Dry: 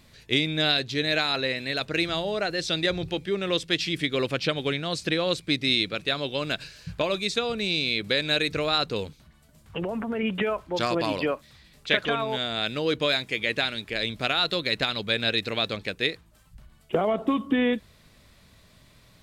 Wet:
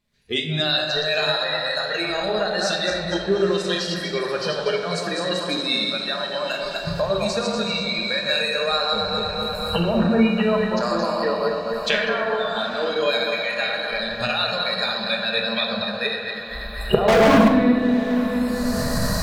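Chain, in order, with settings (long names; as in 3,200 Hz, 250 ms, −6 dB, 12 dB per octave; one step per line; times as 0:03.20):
feedback delay that plays each chunk backwards 121 ms, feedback 65%, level −3 dB
camcorder AGC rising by 28 dB per second
noise reduction from a noise print of the clip's start 22 dB
0:17.08–0:17.48: leveller curve on the samples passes 5
feedback delay with all-pass diffusion 902 ms, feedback 69%, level −16 dB
rectangular room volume 1,300 cubic metres, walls mixed, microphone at 1.3 metres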